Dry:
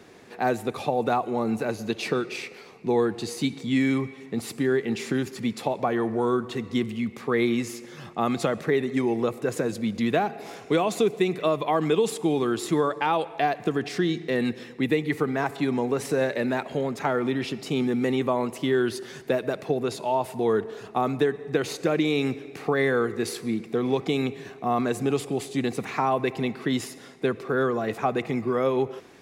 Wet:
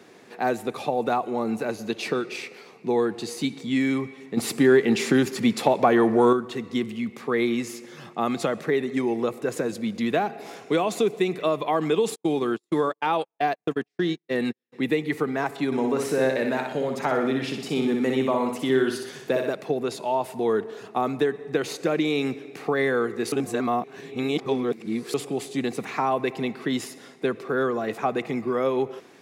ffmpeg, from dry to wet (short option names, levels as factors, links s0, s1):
-filter_complex "[0:a]asettb=1/sr,asplit=3[s0][s1][s2];[s0]atrim=end=4.374[s3];[s1]atrim=start=4.37:end=6.33,asetpts=PTS-STARTPTS,afade=t=in:d=0.004:c=qsin,afade=t=out:st=1.956:d=0.004:c=qsin,acontrast=87[s4];[s2]atrim=start=6.326[s5];[s3][s4]acrossfade=d=0.004:c1=hsin:c2=qsin[s6];[s6][s5]acrossfade=d=0.004:c1=qsin:c2=hsin,asplit=3[s7][s8][s9];[s7]afade=t=out:st=12.14:d=0.02[s10];[s8]agate=range=0.00355:threshold=0.0447:ratio=16:release=100:detection=peak,afade=t=in:st=12.14:d=0.02,afade=t=out:st=14.72:d=0.02[s11];[s9]afade=t=in:st=14.72:d=0.02[s12];[s10][s11][s12]amix=inputs=3:normalize=0,asettb=1/sr,asplit=3[s13][s14][s15];[s13]atrim=end=15.664[s16];[s14]atrim=start=15.66:end=19.51,asetpts=PTS-STARTPTS,afade=t=in:d=0.004:c=qsin,afade=t=out:st=3.846:d=0.004:c=qsin,aecho=1:1:61|122|183|244|305|366:0.562|0.281|0.141|0.0703|0.0351|0.0176,atrim=end_sample=169785[s17];[s15]atrim=start=19.506[s18];[s16][s17]acrossfade=d=0.004:c1=hsin:c2=qsin[s19];[s19][s18]acrossfade=d=0.004:c1=qsin:c2=hsin,asplit=3[s20][s21][s22];[s20]atrim=end=23.322[s23];[s21]atrim=start=23.318:end=25.142,asetpts=PTS-STARTPTS,areverse[s24];[s22]atrim=start=25.138[s25];[s23][s24]acrossfade=d=0.004:c1=hsin:c2=hsin[s26];[s26][s25]acrossfade=d=0.004:c1=hsin:c2=hsin,highpass=150"